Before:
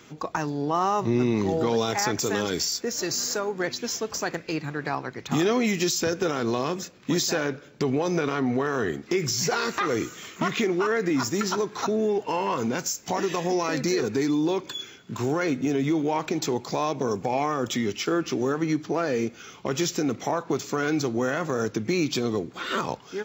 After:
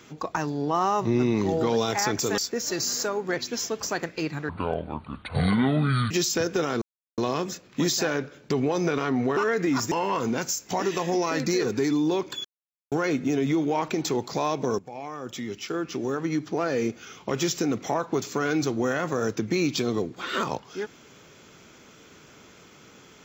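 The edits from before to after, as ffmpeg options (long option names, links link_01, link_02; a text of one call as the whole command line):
ffmpeg -i in.wav -filter_complex "[0:a]asplit=10[link_01][link_02][link_03][link_04][link_05][link_06][link_07][link_08][link_09][link_10];[link_01]atrim=end=2.382[link_11];[link_02]atrim=start=2.688:end=4.804[link_12];[link_03]atrim=start=4.8:end=5.77,asetpts=PTS-STARTPTS,asetrate=26460,aresample=44100[link_13];[link_04]atrim=start=5.766:end=6.48,asetpts=PTS-STARTPTS,afade=type=out:start_time=0.71:duration=0.004:curve=hsin,apad=pad_dur=0.36[link_14];[link_05]atrim=start=6.48:end=8.672,asetpts=PTS-STARTPTS,afade=type=in:duration=0.004:curve=hsin[link_15];[link_06]atrim=start=10.798:end=11.352[link_16];[link_07]atrim=start=12.288:end=14.82,asetpts=PTS-STARTPTS,afade=type=out:start_time=2.528:duration=0.004:curve=hsin[link_17];[link_08]atrim=start=14.82:end=15.29,asetpts=PTS-STARTPTS,volume=0[link_18];[link_09]atrim=start=15.29:end=17.16,asetpts=PTS-STARTPTS,afade=type=in:duration=0.004:curve=hsin,afade=type=out:start_time=1.866:duration=0.004:curve=hsin:silence=0.16788[link_19];[link_10]atrim=start=17.16,asetpts=PTS-STARTPTS,afade=type=in:duration=2.03:silence=0.16788[link_20];[link_11][link_12]acrossfade=duration=0.004:curve1=hsin:curve2=hsin[link_21];[link_21][link_13]acrossfade=duration=0.004:curve1=hsin:curve2=hsin[link_22];[link_14][link_15]concat=n=2:v=0:a=1[link_23];[link_22][link_23]acrossfade=duration=0.004:curve1=hsin:curve2=hsin[link_24];[link_24][link_16]acrossfade=duration=0.004:curve1=hsin:curve2=hsin[link_25];[link_17][link_18][link_19][link_20]concat=n=4:v=0:a=1[link_26];[link_25][link_26]acrossfade=duration=0.004:curve1=hsin:curve2=hsin" out.wav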